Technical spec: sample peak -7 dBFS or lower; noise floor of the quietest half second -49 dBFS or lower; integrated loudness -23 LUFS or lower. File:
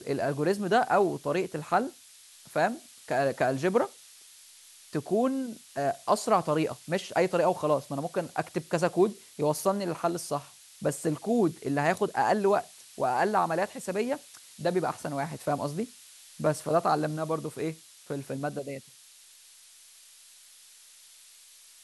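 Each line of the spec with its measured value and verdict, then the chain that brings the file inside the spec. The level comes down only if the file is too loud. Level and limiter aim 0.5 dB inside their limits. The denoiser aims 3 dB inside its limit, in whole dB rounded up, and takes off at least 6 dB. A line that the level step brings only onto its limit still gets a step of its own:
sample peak -10.5 dBFS: OK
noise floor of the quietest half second -55 dBFS: OK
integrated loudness -29.0 LUFS: OK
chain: none

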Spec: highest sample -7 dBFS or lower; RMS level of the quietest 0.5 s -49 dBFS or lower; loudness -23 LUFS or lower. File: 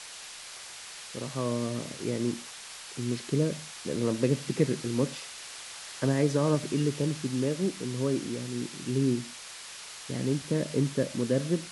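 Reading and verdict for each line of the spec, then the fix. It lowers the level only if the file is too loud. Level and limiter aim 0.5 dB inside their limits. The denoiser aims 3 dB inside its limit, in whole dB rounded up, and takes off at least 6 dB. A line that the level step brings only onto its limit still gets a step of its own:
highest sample -12.5 dBFS: OK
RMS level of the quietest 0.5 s -44 dBFS: fail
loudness -30.5 LUFS: OK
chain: denoiser 8 dB, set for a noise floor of -44 dBFS

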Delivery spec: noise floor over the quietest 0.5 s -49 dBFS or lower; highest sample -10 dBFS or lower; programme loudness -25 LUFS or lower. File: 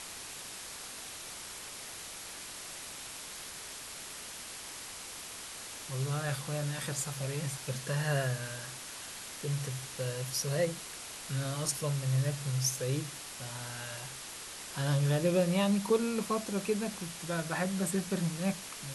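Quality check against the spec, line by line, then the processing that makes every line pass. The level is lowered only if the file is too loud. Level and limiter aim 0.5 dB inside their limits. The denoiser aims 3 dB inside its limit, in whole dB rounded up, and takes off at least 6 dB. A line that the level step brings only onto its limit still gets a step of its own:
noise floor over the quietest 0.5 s -45 dBFS: fail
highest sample -16.0 dBFS: OK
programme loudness -35.0 LUFS: OK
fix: denoiser 7 dB, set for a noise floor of -45 dBFS

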